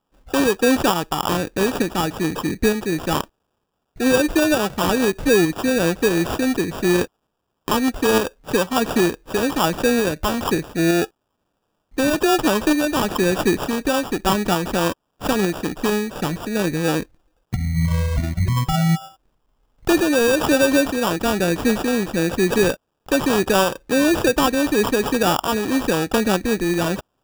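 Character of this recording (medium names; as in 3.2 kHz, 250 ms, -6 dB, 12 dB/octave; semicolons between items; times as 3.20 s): a quantiser's noise floor 12-bit, dither triangular; tremolo saw up 1.1 Hz, depth 35%; aliases and images of a low sample rate 2.1 kHz, jitter 0%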